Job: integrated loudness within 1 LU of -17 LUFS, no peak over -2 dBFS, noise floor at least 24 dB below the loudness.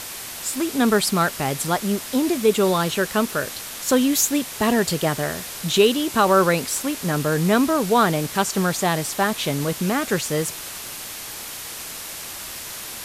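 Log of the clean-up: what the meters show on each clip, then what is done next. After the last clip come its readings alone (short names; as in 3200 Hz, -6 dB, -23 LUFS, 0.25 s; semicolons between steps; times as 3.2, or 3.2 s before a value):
noise floor -34 dBFS; noise floor target -46 dBFS; loudness -21.5 LUFS; peak -5.0 dBFS; loudness target -17.0 LUFS
-> denoiser 12 dB, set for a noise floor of -34 dBFS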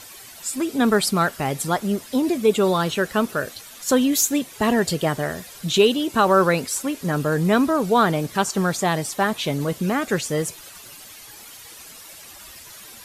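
noise floor -43 dBFS; noise floor target -46 dBFS
-> denoiser 6 dB, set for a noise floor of -43 dBFS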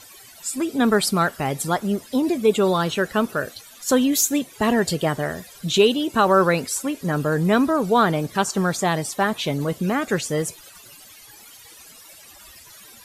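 noise floor -46 dBFS; loudness -21.5 LUFS; peak -5.5 dBFS; loudness target -17.0 LUFS
-> gain +4.5 dB; limiter -2 dBFS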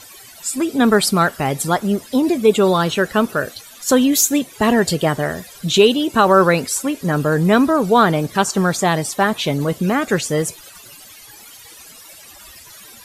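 loudness -17.0 LUFS; peak -2.0 dBFS; noise floor -42 dBFS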